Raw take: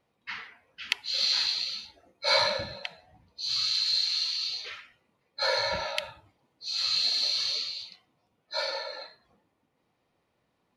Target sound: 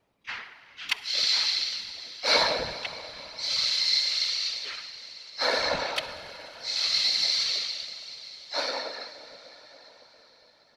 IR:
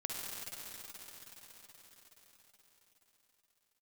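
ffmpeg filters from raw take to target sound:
-filter_complex "[0:a]asplit=2[a][b];[1:a]atrim=start_sample=2205,lowshelf=f=66:g=-7.5[c];[b][c]afir=irnorm=-1:irlink=0,volume=-10dB[d];[a][d]amix=inputs=2:normalize=0,afftfilt=real='hypot(re,im)*cos(2*PI*random(0))':imag='hypot(re,im)*sin(2*PI*random(1))':win_size=512:overlap=0.75,asplit=3[e][f][g];[f]asetrate=22050,aresample=44100,atempo=2,volume=-15dB[h];[g]asetrate=55563,aresample=44100,atempo=0.793701,volume=-11dB[i];[e][h][i]amix=inputs=3:normalize=0,volume=5.5dB"

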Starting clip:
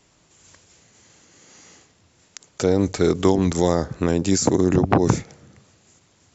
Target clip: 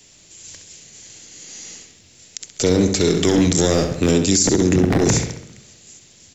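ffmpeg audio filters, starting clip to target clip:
-filter_complex "[0:a]asplit=2[a][b];[b]adelay=66,lowpass=f=3.9k:p=1,volume=-7dB,asplit=2[c][d];[d]adelay=66,lowpass=f=3.9k:p=1,volume=0.53,asplit=2[e][f];[f]adelay=66,lowpass=f=3.9k:p=1,volume=0.53,asplit=2[g][h];[h]adelay=66,lowpass=f=3.9k:p=1,volume=0.53,asplit=2[i][j];[j]adelay=66,lowpass=f=3.9k:p=1,volume=0.53,asplit=2[k][l];[l]adelay=66,lowpass=f=3.9k:p=1,volume=0.53[m];[a][c][e][g][i][k][m]amix=inputs=7:normalize=0,acrossover=split=140|780|1600[n][o][p][q];[p]aeval=exprs='abs(val(0))':c=same[r];[n][o][r][q]amix=inputs=4:normalize=0,highshelf=f=2.2k:g=11,alimiter=limit=-10.5dB:level=0:latency=1:release=45,volume=4dB"

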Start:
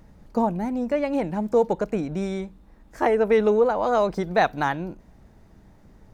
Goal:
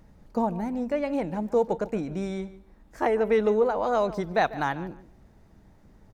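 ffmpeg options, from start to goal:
-filter_complex "[0:a]asplit=2[a][b];[b]adelay=146,lowpass=f=3.9k:p=1,volume=-16dB,asplit=2[c][d];[d]adelay=146,lowpass=f=3.9k:p=1,volume=0.22[e];[a][c][e]amix=inputs=3:normalize=0,volume=-3.5dB"

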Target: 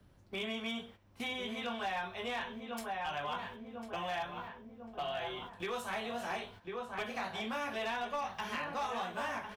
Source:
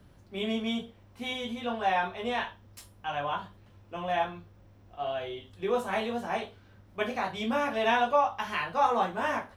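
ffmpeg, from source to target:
-filter_complex "[0:a]acontrast=70,agate=range=-13dB:threshold=-42dB:ratio=16:detection=peak,asplit=2[a][b];[b]adelay=1046,lowpass=f=1.7k:p=1,volume=-8.5dB,asplit=2[c][d];[d]adelay=1046,lowpass=f=1.7k:p=1,volume=0.42,asplit=2[e][f];[f]adelay=1046,lowpass=f=1.7k:p=1,volume=0.42,asplit=2[g][h];[h]adelay=1046,lowpass=f=1.7k:p=1,volume=0.42,asplit=2[i][j];[j]adelay=1046,lowpass=f=1.7k:p=1,volume=0.42[k];[c][e][g][i][k]amix=inputs=5:normalize=0[l];[a][l]amix=inputs=2:normalize=0,acrossover=split=170|930|2200[m][n][o][p];[m]acompressor=threshold=-58dB:ratio=4[q];[n]acompressor=threshold=-45dB:ratio=4[r];[o]acompressor=threshold=-43dB:ratio=4[s];[p]acompressor=threshold=-47dB:ratio=4[t];[q][r][s][t]amix=inputs=4:normalize=0,asoftclip=type=hard:threshold=-31dB"

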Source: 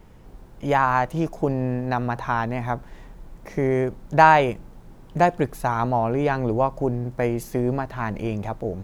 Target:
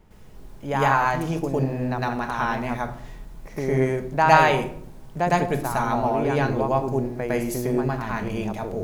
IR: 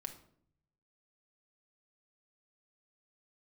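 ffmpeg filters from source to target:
-filter_complex "[0:a]asplit=2[a][b];[1:a]atrim=start_sample=2205,highshelf=f=2.4k:g=9.5,adelay=108[c];[b][c]afir=irnorm=-1:irlink=0,volume=6dB[d];[a][d]amix=inputs=2:normalize=0,volume=-6dB"

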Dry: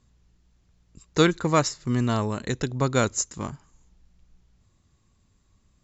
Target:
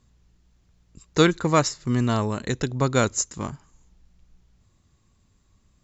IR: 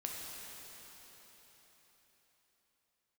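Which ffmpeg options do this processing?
-af "volume=1.5dB"

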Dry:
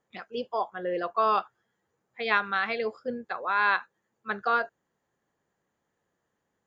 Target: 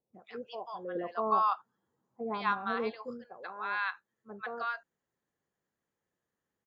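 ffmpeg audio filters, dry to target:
-filter_complex "[0:a]asettb=1/sr,asplit=3[a][b][c];[a]atrim=end=0.954[d];[b]atrim=start=0.95:end=3.03,asetpts=PTS-STARTPTS,afade=t=in:d=0.004:c=qsin,afade=t=out:st=2.076:d=0.004:c=qsin,equalizer=f=125:t=o:w=1:g=5,equalizer=f=250:t=o:w=1:g=10,equalizer=f=1k:t=o:w=1:g=11,equalizer=f=2k:t=o:w=1:g=-8[e];[c]atrim=start=3.026[f];[d][e]acrossfade=d=0.004:c1=hsin:c2=qsin[g];[g][f]acrossfade=d=0.004:c1=qsin:c2=hsin,acrossover=split=810[h][i];[i]adelay=140[j];[h][j]amix=inputs=2:normalize=0,volume=-8dB"

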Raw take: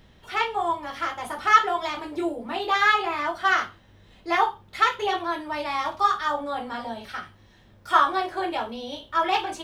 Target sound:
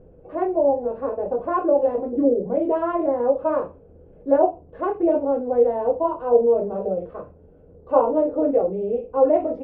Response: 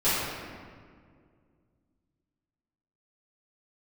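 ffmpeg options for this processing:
-af "asetrate=36028,aresample=44100,atempo=1.22405,lowpass=f=490:t=q:w=4.9,volume=3.5dB"

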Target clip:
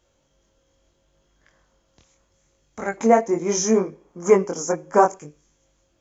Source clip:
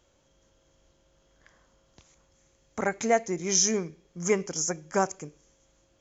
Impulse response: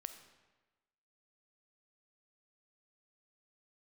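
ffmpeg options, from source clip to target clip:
-filter_complex "[0:a]asettb=1/sr,asplit=3[a][b][c];[a]atrim=end=2.974[d];[b]atrim=start=2.97:end=5.17,asetpts=PTS-STARTPTS,afade=t=in:d=0.004:c=qsin,afade=t=out:st=2.196:d=0.004:c=qsin,equalizer=f=125:t=o:w=1:g=-3,equalizer=f=250:t=o:w=1:g=9,equalizer=f=500:t=o:w=1:g=8,equalizer=f=1k:t=o:w=1:g=12,equalizer=f=4k:t=o:w=1:g=-5[e];[c]atrim=start=5.166[f];[d][e]acrossfade=d=0.004:c1=hsin:c2=qsin[g];[g][f]acrossfade=d=0.004:c1=qsin:c2=hsin,flanger=delay=19.5:depth=4.9:speed=0.73,volume=2.5dB"

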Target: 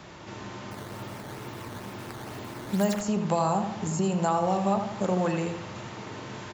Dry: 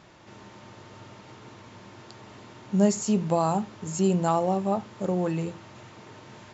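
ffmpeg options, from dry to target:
-filter_complex "[0:a]acrossover=split=170|700|1400[a][b][c][d];[a]acompressor=threshold=-42dB:ratio=4[e];[b]acompressor=threshold=-39dB:ratio=4[f];[c]acompressor=threshold=-35dB:ratio=4[g];[d]acompressor=threshold=-45dB:ratio=4[h];[e][f][g][h]amix=inputs=4:normalize=0,asettb=1/sr,asplit=3[i][j][k];[i]atrim=end=0.714[l];[j]atrim=start=0.71:end=3.01,asetpts=PTS-STARTPTS,afade=t=in:d=0.004:c=qsin,afade=t=out:st=2.296:d=0.004:c=qsin,acrusher=samples=10:mix=1:aa=0.000001:lfo=1:lforange=16:lforate=2.2[m];[k]atrim=start=3.006[n];[l][m]acrossfade=d=0.004:c1=hsin:c2=qsin[o];[o][n]acrossfade=d=0.004:c1=qsin:c2=hsin,asplit=2[p][q];[q]adelay=82,lowpass=f=3k:p=1,volume=-7dB,asplit=2[r][s];[s]adelay=82,lowpass=f=3k:p=1,volume=0.52,asplit=2[t][u];[u]adelay=82,lowpass=f=3k:p=1,volume=0.52,asplit=2[v][w];[w]adelay=82,lowpass=f=3k:p=1,volume=0.52,asplit=2[x][y];[y]adelay=82,lowpass=f=3k:p=1,volume=0.52,asplit=2[z][aa];[aa]adelay=82,lowpass=f=3k:p=1,volume=0.52[ab];[p][r][t][v][x][z][ab]amix=inputs=7:normalize=0,volume=7dB"

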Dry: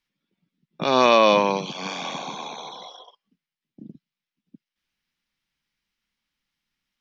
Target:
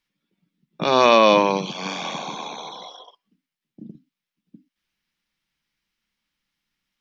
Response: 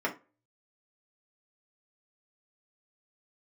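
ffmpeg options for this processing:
-filter_complex "[0:a]asplit=2[a][b];[b]lowshelf=f=370:t=q:w=3:g=7[c];[1:a]atrim=start_sample=2205,atrim=end_sample=6174[d];[c][d]afir=irnorm=-1:irlink=0,volume=-27.5dB[e];[a][e]amix=inputs=2:normalize=0,volume=1.5dB"

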